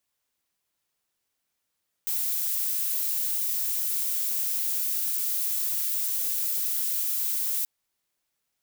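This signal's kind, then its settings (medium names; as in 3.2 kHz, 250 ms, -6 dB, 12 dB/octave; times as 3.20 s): noise violet, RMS -27.5 dBFS 5.58 s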